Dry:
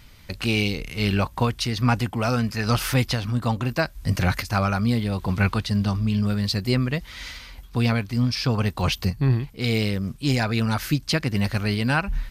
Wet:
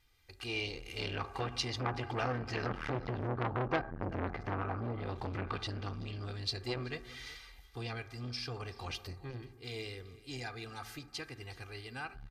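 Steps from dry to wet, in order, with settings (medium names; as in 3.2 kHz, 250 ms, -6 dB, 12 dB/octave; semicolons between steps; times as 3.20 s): Doppler pass-by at 3.67 s, 5 m/s, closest 1.3 m; low-pass that closes with the level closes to 1 kHz, closed at -30.5 dBFS; compression 4:1, threshold -34 dBFS, peak gain reduction 12.5 dB; comb 2.5 ms, depth 85%; delay 380 ms -20.5 dB; reverberation RT60 1.4 s, pre-delay 4 ms, DRR 12 dB; level rider gain up to 9 dB; bass shelf 390 Hz -6 dB; transformer saturation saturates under 1.5 kHz; trim +1 dB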